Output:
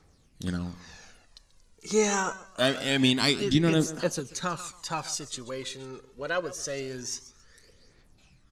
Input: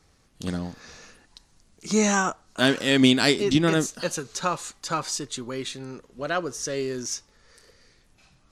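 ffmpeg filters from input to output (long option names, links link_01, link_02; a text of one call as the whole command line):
ffmpeg -i in.wav -af "aecho=1:1:137|274|411:0.141|0.0381|0.0103,aphaser=in_gain=1:out_gain=1:delay=2.4:decay=0.51:speed=0.25:type=triangular,volume=-4.5dB" out.wav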